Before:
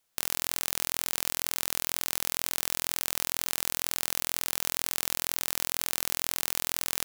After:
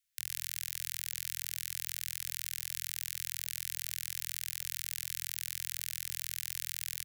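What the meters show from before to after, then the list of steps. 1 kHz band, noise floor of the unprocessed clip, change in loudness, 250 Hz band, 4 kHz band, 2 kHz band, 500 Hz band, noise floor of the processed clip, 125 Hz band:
−24.0 dB, −76 dBFS, −7.5 dB, below −25 dB, −8.0 dB, −8.5 dB, below −40 dB, −58 dBFS, −9.5 dB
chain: Chebyshev band-stop filter 120–1,800 Hz, order 3
single-tap delay 111 ms −21 dB
level −7 dB

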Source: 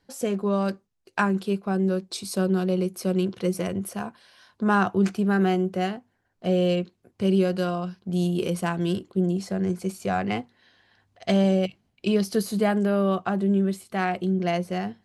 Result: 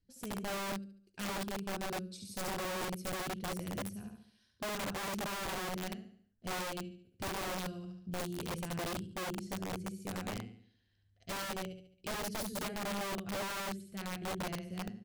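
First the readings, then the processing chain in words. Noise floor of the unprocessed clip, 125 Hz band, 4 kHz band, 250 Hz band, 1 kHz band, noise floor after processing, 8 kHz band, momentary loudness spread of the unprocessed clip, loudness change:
−72 dBFS, −16.5 dB, −5.5 dB, −18.0 dB, −11.0 dB, −73 dBFS, −3.0 dB, 8 LU, −14.0 dB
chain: guitar amp tone stack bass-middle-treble 10-0-1
repeating echo 71 ms, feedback 44%, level −4 dB
wrap-around overflow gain 37.5 dB
level +4 dB

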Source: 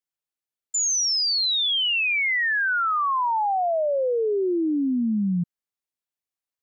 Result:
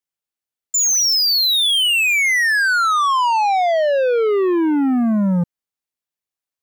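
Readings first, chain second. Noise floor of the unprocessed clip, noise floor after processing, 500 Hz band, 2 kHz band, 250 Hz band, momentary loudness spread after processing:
below −85 dBFS, below −85 dBFS, +6.5 dB, +6.5 dB, +6.5 dB, 4 LU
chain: leveller curve on the samples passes 2
level +5.5 dB

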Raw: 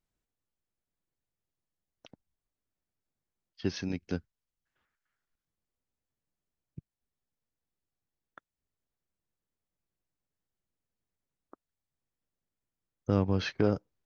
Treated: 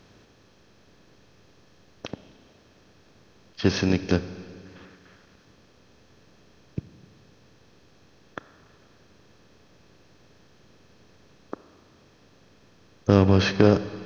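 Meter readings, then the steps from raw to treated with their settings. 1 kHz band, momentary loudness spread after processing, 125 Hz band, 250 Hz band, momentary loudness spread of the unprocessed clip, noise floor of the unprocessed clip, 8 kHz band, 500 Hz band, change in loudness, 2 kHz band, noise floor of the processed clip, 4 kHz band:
+11.0 dB, 22 LU, +10.0 dB, +10.0 dB, 11 LU, below −85 dBFS, can't be measured, +10.5 dB, +9.0 dB, +11.0 dB, −57 dBFS, +11.0 dB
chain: compressor on every frequency bin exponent 0.6
four-comb reverb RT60 2.3 s, combs from 28 ms, DRR 13 dB
level +8 dB

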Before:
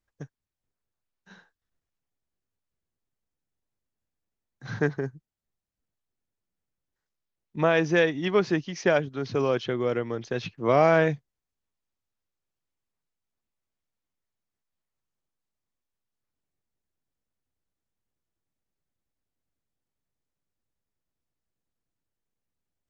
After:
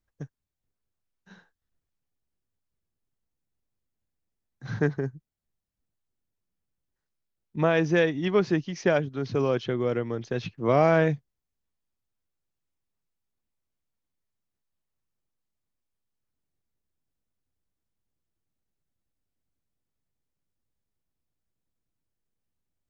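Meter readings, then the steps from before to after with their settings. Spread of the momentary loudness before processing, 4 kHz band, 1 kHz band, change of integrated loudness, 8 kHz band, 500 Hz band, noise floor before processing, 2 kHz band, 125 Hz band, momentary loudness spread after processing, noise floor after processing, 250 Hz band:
13 LU, −2.5 dB, −1.5 dB, −0.5 dB, can't be measured, −0.5 dB, below −85 dBFS, −2.5 dB, +2.5 dB, 15 LU, −85 dBFS, +1.0 dB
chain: low-shelf EQ 330 Hz +6 dB
level −2.5 dB

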